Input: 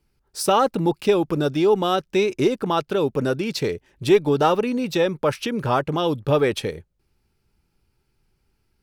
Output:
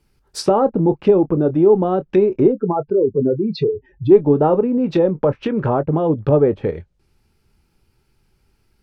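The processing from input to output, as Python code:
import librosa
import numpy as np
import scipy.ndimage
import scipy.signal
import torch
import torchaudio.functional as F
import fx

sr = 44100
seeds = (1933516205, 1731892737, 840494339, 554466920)

y = fx.spec_expand(x, sr, power=2.6, at=(2.51, 4.1), fade=0.02)
y = fx.env_lowpass_down(y, sr, base_hz=640.0, full_db=-19.0)
y = fx.chorus_voices(y, sr, voices=2, hz=0.33, base_ms=23, depth_ms=4.4, mix_pct=20)
y = y * 10.0 ** (8.0 / 20.0)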